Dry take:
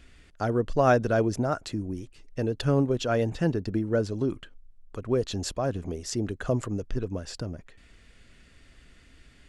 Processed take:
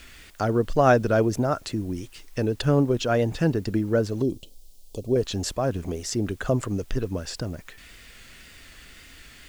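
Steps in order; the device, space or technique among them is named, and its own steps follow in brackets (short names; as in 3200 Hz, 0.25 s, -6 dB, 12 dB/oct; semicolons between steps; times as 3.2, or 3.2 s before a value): noise-reduction cassette on a plain deck (mismatched tape noise reduction encoder only; wow and flutter; white noise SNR 33 dB); 4.22–5.16 Chebyshev band-stop 580–4000 Hz, order 2; gain +3 dB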